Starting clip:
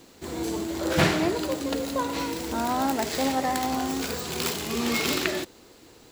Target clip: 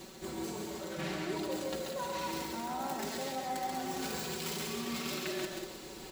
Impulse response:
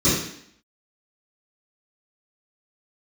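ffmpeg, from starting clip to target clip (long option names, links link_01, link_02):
-af "aecho=1:1:5.3:0.79,areverse,acompressor=threshold=-38dB:ratio=10,areverse,aecho=1:1:135|193|312:0.596|0.398|0.224,volume=1.5dB"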